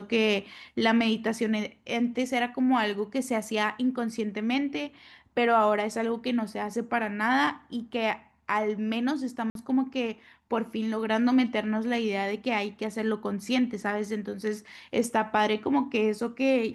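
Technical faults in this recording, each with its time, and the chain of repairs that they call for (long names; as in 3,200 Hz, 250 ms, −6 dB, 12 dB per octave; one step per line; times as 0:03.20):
0:09.50–0:09.55: drop-out 52 ms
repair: repair the gap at 0:09.50, 52 ms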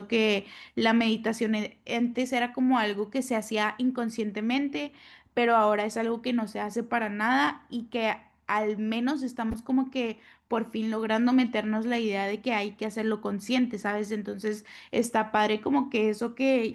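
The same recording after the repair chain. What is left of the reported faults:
none of them is left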